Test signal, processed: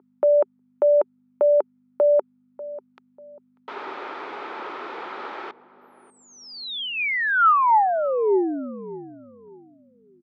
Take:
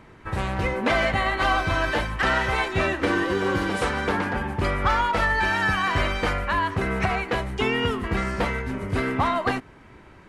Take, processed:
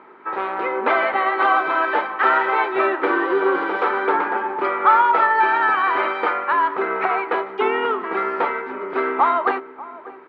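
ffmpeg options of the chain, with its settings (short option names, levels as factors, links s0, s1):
-filter_complex "[0:a]equalizer=f=2500:t=o:w=0.3:g=5.5,aeval=exprs='val(0)+0.00891*(sin(2*PI*50*n/s)+sin(2*PI*2*50*n/s)/2+sin(2*PI*3*50*n/s)/3+sin(2*PI*4*50*n/s)/4+sin(2*PI*5*50*n/s)/5)':c=same,highpass=f=310:w=0.5412,highpass=f=310:w=1.3066,equalizer=f=390:t=q:w=4:g=8,equalizer=f=880:t=q:w=4:g=9,equalizer=f=1300:t=q:w=4:g=10,equalizer=f=2700:t=q:w=4:g=-8,lowpass=f=3200:w=0.5412,lowpass=f=3200:w=1.3066,asplit=2[s0][s1];[s1]adelay=592,lowpass=f=950:p=1,volume=0.168,asplit=2[s2][s3];[s3]adelay=592,lowpass=f=950:p=1,volume=0.32,asplit=2[s4][s5];[s5]adelay=592,lowpass=f=950:p=1,volume=0.32[s6];[s2][s4][s6]amix=inputs=3:normalize=0[s7];[s0][s7]amix=inputs=2:normalize=0"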